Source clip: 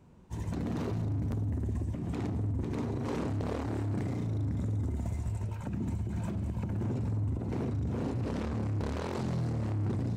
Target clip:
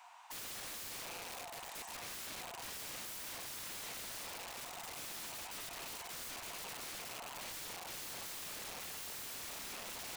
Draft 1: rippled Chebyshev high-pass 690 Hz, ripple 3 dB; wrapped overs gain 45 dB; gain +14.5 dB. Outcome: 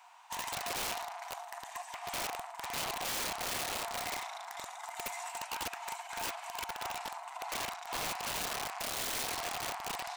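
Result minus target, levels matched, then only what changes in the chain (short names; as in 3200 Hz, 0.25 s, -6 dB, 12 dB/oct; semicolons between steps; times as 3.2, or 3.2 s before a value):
wrapped overs: distortion -21 dB
change: wrapped overs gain 55.5 dB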